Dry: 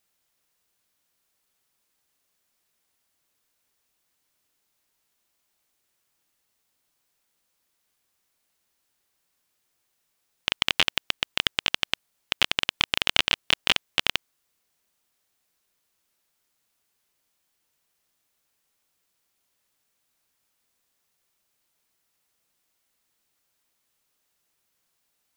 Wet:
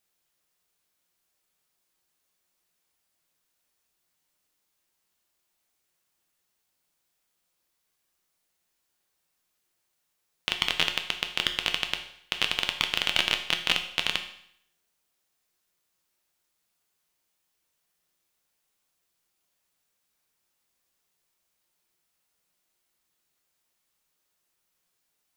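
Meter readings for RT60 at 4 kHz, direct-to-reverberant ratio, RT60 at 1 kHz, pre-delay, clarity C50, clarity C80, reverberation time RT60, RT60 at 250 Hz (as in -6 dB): 0.70 s, 5.0 dB, 0.70 s, 6 ms, 9.5 dB, 12.5 dB, 0.70 s, 0.70 s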